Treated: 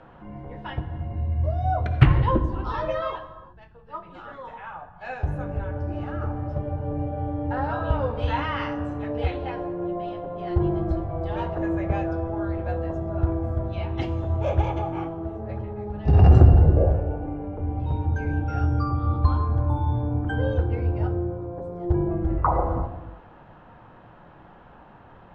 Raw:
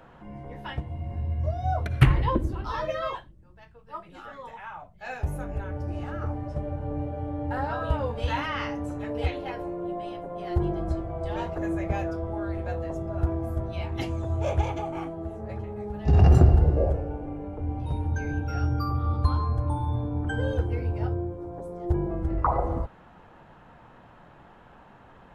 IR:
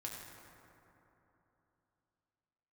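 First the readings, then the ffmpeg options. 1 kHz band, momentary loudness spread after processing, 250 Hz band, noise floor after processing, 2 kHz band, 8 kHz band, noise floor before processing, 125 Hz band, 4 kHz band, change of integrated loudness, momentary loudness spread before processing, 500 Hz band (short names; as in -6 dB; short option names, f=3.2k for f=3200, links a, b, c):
+3.0 dB, 14 LU, +3.0 dB, -49 dBFS, +1.0 dB, n/a, -52 dBFS, +3.5 dB, -0.5 dB, +3.0 dB, 13 LU, +3.0 dB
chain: -filter_complex "[0:a]lowpass=3.4k,asplit=2[a][b];[b]equalizer=f=2.1k:w=3.6:g=-13.5[c];[1:a]atrim=start_sample=2205,afade=t=out:st=0.41:d=0.01,atrim=end_sample=18522[d];[c][d]afir=irnorm=-1:irlink=0,volume=-1dB[e];[a][e]amix=inputs=2:normalize=0,volume=-1dB"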